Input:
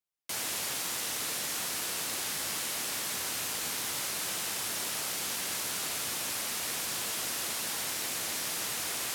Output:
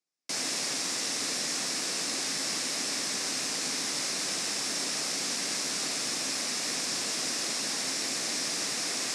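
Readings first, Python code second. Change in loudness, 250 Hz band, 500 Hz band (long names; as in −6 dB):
+2.5 dB, +7.0 dB, +3.5 dB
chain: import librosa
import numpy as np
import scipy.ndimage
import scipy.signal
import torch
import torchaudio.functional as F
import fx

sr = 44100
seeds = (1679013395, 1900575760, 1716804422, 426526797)

y = fx.cabinet(x, sr, low_hz=140.0, low_slope=24, high_hz=8800.0, hz=(270.0, 920.0, 1400.0, 3100.0, 5300.0), db=(7, -5, -4, -6, 6))
y = y * librosa.db_to_amplitude(3.5)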